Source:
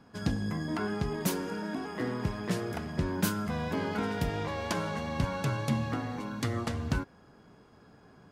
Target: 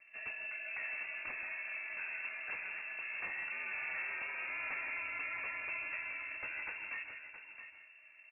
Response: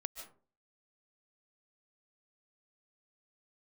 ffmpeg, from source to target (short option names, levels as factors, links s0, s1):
-filter_complex "[0:a]equalizer=f=390:t=o:w=0.5:g=-14.5,acrossover=split=260|1200[s0][s1][s2];[s0]acompressor=threshold=0.00501:ratio=8[s3];[s3][s1][s2]amix=inputs=3:normalize=0,asoftclip=type=hard:threshold=0.0531,asetrate=28595,aresample=44100,atempo=1.54221,aresample=16000,asoftclip=type=tanh:threshold=0.0188,aresample=44100,aecho=1:1:669:0.316[s4];[1:a]atrim=start_sample=2205[s5];[s4][s5]afir=irnorm=-1:irlink=0,lowpass=f=2400:t=q:w=0.5098,lowpass=f=2400:t=q:w=0.6013,lowpass=f=2400:t=q:w=0.9,lowpass=f=2400:t=q:w=2.563,afreqshift=-2800,volume=1.12"